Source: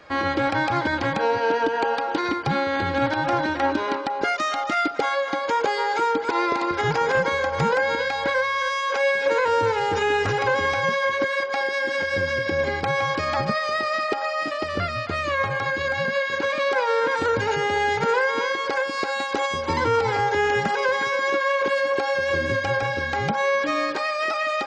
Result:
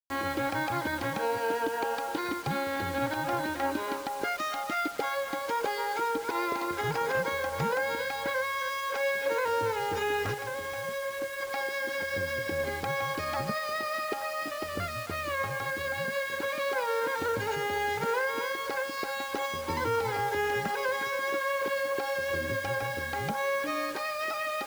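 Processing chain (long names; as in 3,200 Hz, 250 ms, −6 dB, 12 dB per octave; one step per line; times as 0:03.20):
0:10.34–0:11.41: tuned comb filter 110 Hz, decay 0.31 s, harmonics odd, mix 60%
bit reduction 6 bits
level −8 dB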